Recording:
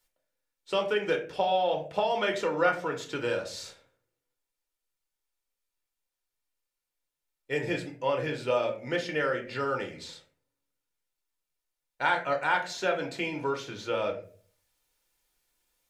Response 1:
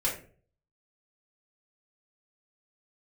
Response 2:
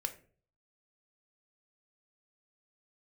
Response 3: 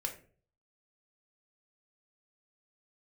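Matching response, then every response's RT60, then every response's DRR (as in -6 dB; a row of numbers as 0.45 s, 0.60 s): 3; 0.45 s, 0.45 s, 0.45 s; -6.0 dB, 6.5 dB, 2.0 dB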